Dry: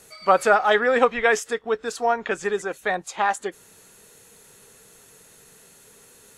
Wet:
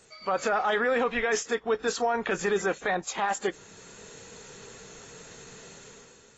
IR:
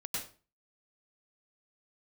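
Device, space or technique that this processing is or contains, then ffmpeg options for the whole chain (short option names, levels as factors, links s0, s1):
low-bitrate web radio: -af "dynaudnorm=f=110:g=9:m=3.16,alimiter=limit=0.224:level=0:latency=1:release=15,volume=0.596" -ar 24000 -c:a aac -b:a 24k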